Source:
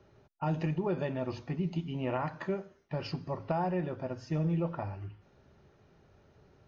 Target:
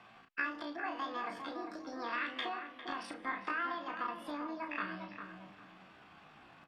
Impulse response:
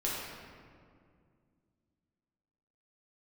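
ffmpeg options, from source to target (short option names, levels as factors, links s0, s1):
-filter_complex "[0:a]lowshelf=f=64:g=-4.5,acompressor=threshold=0.01:ratio=12,acrossover=split=550 2100:gain=0.224 1 0.0891[s0][s1][s2];[s0][s1][s2]amix=inputs=3:normalize=0,asetrate=83250,aresample=44100,atempo=0.529732,asplit=2[s3][s4];[s4]adelay=34,volume=0.447[s5];[s3][s5]amix=inputs=2:normalize=0,asplit=2[s6][s7];[s7]adelay=402,lowpass=f=1100:p=1,volume=0.562,asplit=2[s8][s9];[s9]adelay=402,lowpass=f=1100:p=1,volume=0.36,asplit=2[s10][s11];[s11]adelay=402,lowpass=f=1100:p=1,volume=0.36,asplit=2[s12][s13];[s13]adelay=402,lowpass=f=1100:p=1,volume=0.36[s14];[s8][s10][s12][s14]amix=inputs=4:normalize=0[s15];[s6][s15]amix=inputs=2:normalize=0,volume=3.35"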